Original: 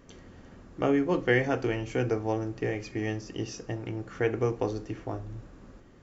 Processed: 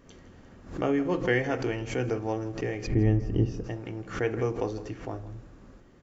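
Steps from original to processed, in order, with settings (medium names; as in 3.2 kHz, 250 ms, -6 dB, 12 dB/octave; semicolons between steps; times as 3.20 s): 2.87–3.64 s: tilt EQ -4.5 dB/octave; delay 161 ms -15.5 dB; swell ahead of each attack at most 120 dB/s; trim -1.5 dB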